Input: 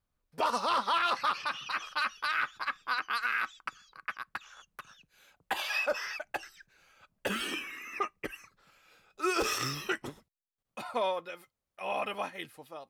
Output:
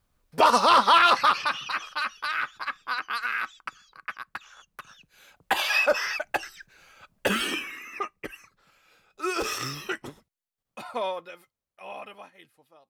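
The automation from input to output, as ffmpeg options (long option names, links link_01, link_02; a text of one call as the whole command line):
ffmpeg -i in.wav -af "volume=17.5dB,afade=type=out:start_time=1:duration=0.89:silence=0.354813,afade=type=in:start_time=4.65:duration=0.87:silence=0.473151,afade=type=out:start_time=7.26:duration=0.66:silence=0.421697,afade=type=out:start_time=11.05:duration=1.22:silence=0.237137" out.wav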